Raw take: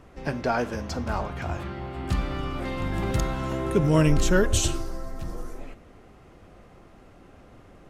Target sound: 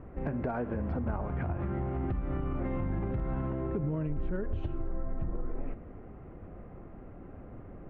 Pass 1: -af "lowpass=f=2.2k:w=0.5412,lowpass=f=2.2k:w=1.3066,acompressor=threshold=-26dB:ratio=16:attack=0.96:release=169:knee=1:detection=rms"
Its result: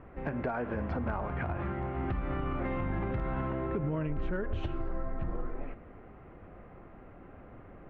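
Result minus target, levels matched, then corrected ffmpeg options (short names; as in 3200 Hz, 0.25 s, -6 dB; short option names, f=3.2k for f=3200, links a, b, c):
1000 Hz band +4.0 dB
-af "lowpass=f=2.2k:w=0.5412,lowpass=f=2.2k:w=1.3066,tiltshelf=f=710:g=5.5,acompressor=threshold=-26dB:ratio=16:attack=0.96:release=169:knee=1:detection=rms"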